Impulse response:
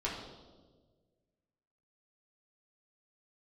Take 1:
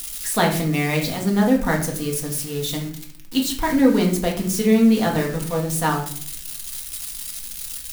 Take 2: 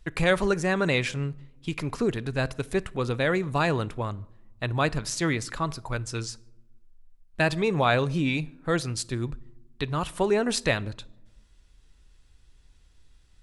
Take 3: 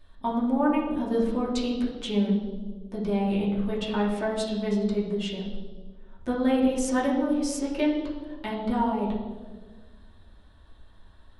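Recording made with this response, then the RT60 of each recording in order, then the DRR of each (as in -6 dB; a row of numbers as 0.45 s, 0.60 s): 3; 0.55 s, no single decay rate, 1.5 s; -1.0 dB, 17.5 dB, -6.5 dB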